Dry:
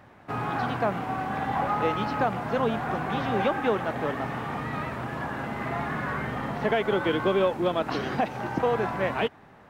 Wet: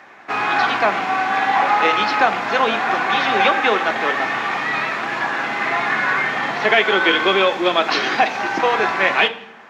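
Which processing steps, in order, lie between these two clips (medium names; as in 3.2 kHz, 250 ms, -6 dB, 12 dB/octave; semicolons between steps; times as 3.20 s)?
frequency weighting A; reverberation RT60 0.65 s, pre-delay 3 ms, DRR 7.5 dB; dynamic bell 3.9 kHz, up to +6 dB, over -43 dBFS, Q 0.99; trim +6 dB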